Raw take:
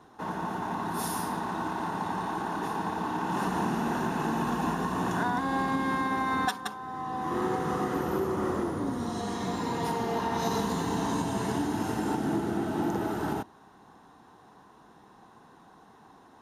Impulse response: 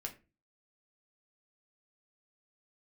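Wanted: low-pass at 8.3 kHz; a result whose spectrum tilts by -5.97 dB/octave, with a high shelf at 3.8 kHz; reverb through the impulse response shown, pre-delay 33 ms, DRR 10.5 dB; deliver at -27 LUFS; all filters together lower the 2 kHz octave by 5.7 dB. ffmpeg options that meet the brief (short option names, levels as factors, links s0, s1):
-filter_complex "[0:a]lowpass=8300,equalizer=f=2000:t=o:g=-7.5,highshelf=f=3800:g=-3,asplit=2[s0][s1];[1:a]atrim=start_sample=2205,adelay=33[s2];[s1][s2]afir=irnorm=-1:irlink=0,volume=0.376[s3];[s0][s3]amix=inputs=2:normalize=0,volume=1.58"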